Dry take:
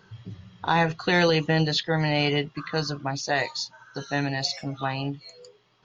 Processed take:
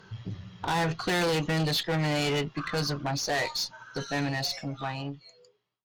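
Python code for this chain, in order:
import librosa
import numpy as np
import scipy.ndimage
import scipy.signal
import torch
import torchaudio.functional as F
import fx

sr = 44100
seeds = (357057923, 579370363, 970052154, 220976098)

y = fx.fade_out_tail(x, sr, length_s=1.93)
y = 10.0 ** (-27.0 / 20.0) * np.tanh(y / 10.0 ** (-27.0 / 20.0))
y = fx.cheby_harmonics(y, sr, harmonics=(4,), levels_db=(-22,), full_scale_db=-27.0)
y = y * librosa.db_to_amplitude(3.0)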